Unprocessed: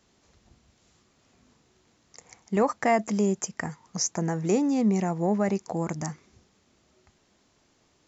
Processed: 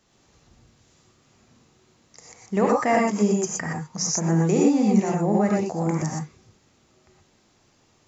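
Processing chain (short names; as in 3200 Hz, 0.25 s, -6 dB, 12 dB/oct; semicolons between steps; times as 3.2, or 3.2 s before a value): non-linear reverb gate 0.14 s rising, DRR -2 dB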